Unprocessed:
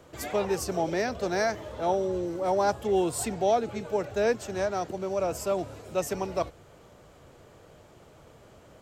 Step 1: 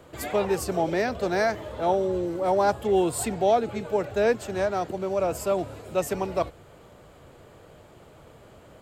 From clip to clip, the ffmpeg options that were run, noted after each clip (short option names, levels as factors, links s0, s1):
-af "equalizer=f=5800:w=3.3:g=-7.5,volume=1.41"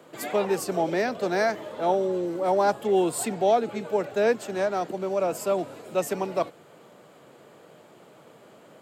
-af "highpass=f=160:w=0.5412,highpass=f=160:w=1.3066"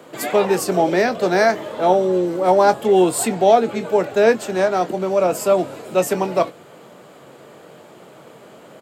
-filter_complex "[0:a]asplit=2[s0][s1];[s1]adelay=22,volume=0.266[s2];[s0][s2]amix=inputs=2:normalize=0,volume=2.51"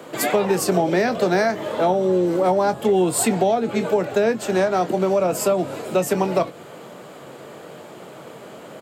-filter_complex "[0:a]acrossover=split=190[s0][s1];[s1]acompressor=threshold=0.1:ratio=10[s2];[s0][s2]amix=inputs=2:normalize=0,volume=1.58"